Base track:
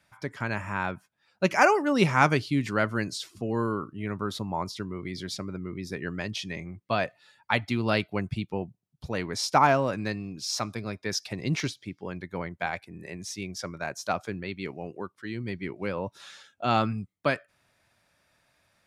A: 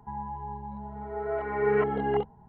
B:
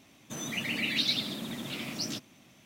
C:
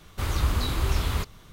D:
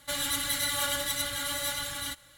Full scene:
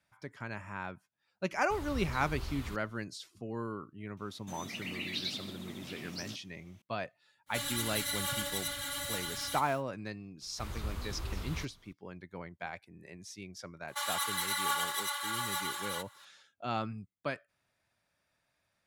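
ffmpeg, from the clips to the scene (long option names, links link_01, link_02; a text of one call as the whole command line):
ffmpeg -i bed.wav -i cue0.wav -i cue1.wav -i cue2.wav -i cue3.wav -filter_complex "[3:a]asplit=2[link_01][link_02];[4:a]asplit=2[link_03][link_04];[0:a]volume=-10.5dB[link_05];[link_03]aeval=exprs='val(0)+0.5*0.00708*sgn(val(0))':channel_layout=same[link_06];[link_04]highpass=frequency=980:width_type=q:width=10[link_07];[link_01]atrim=end=1.52,asetpts=PTS-STARTPTS,volume=-15.5dB,afade=type=in:duration=0.004:curve=hsin,afade=type=out:start_time=1.516:duration=0.004:curve=hsin,adelay=1520[link_08];[2:a]atrim=end=2.65,asetpts=PTS-STARTPTS,volume=-8.5dB,afade=type=in:duration=0.004:curve=hsin,afade=type=out:start_time=2.646:duration=0.004:curve=hsin,adelay=183897S[link_09];[link_06]atrim=end=2.37,asetpts=PTS-STARTPTS,volume=-6.5dB,afade=type=in:duration=0.1,afade=type=out:start_time=2.27:duration=0.1,adelay=328986S[link_10];[link_02]atrim=end=1.52,asetpts=PTS-STARTPTS,volume=-14dB,afade=type=in:duration=0.004:curve=hsin,afade=type=out:start_time=1.516:duration=0.004:curve=hsin,adelay=10410[link_11];[link_07]atrim=end=2.37,asetpts=PTS-STARTPTS,volume=-6dB,afade=type=in:duration=0.004:curve=hsin,afade=type=out:start_time=2.366:duration=0.004:curve=hsin,adelay=13880[link_12];[link_05][link_08][link_09][link_10][link_11][link_12]amix=inputs=6:normalize=0" out.wav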